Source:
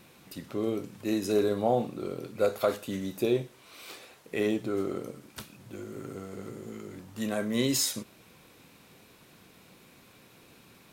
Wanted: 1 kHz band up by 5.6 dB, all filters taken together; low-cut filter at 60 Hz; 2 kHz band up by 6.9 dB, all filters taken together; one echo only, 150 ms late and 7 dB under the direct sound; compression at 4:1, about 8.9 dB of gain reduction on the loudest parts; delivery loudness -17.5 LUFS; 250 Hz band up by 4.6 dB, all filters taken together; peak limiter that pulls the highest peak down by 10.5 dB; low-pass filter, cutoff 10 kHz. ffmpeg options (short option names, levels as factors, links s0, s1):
-af "highpass=60,lowpass=10000,equalizer=f=250:t=o:g=5.5,equalizer=f=1000:t=o:g=6.5,equalizer=f=2000:t=o:g=6.5,acompressor=threshold=0.0398:ratio=4,alimiter=level_in=1.33:limit=0.0631:level=0:latency=1,volume=0.75,aecho=1:1:150:0.447,volume=9.44"